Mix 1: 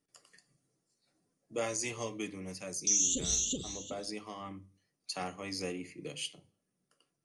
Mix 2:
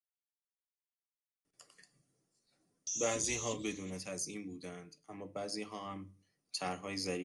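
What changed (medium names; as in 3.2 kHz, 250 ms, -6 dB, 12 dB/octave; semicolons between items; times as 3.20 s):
speech: entry +1.45 s; background -11.0 dB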